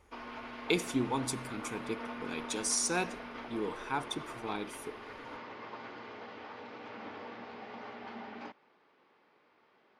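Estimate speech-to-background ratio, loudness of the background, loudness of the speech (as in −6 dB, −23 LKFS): 9.5 dB, −45.0 LKFS, −35.5 LKFS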